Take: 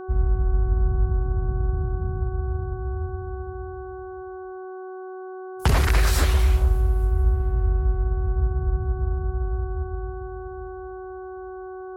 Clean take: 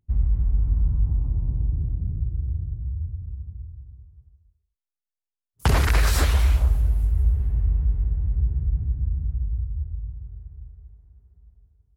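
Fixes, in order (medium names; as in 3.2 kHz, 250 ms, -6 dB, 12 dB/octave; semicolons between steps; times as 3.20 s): de-hum 373.7 Hz, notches 4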